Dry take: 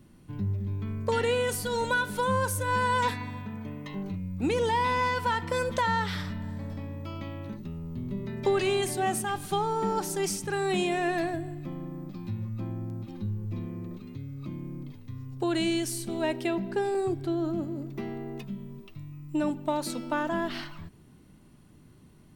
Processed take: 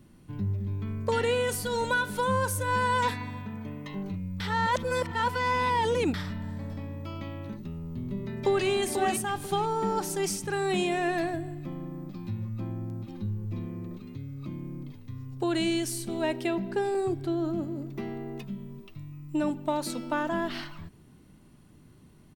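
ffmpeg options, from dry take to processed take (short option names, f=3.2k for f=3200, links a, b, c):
-filter_complex "[0:a]asplit=2[a][b];[b]afade=t=in:st=8.25:d=0.01,afade=t=out:st=8.67:d=0.01,aecho=0:1:490|980|1470:0.595662|0.148916|0.0372289[c];[a][c]amix=inputs=2:normalize=0,asplit=3[d][e][f];[d]atrim=end=4.402[g];[e]atrim=start=4.398:end=6.142,asetpts=PTS-STARTPTS,areverse[h];[f]atrim=start=6.138[i];[g][h]acrossfade=d=0.004:c1=hsin:c2=hsin[j];[j][i]acrossfade=d=0.004:c1=hsin:c2=hsin"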